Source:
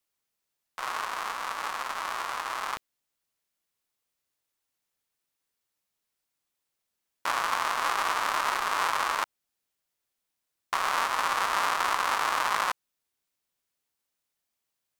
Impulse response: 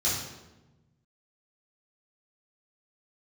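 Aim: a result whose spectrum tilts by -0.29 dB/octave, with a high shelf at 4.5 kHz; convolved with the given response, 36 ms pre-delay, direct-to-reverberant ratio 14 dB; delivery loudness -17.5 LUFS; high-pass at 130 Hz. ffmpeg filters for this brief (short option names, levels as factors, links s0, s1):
-filter_complex "[0:a]highpass=130,highshelf=f=4500:g=-6.5,asplit=2[s0][s1];[1:a]atrim=start_sample=2205,adelay=36[s2];[s1][s2]afir=irnorm=-1:irlink=0,volume=0.0668[s3];[s0][s3]amix=inputs=2:normalize=0,volume=3.76"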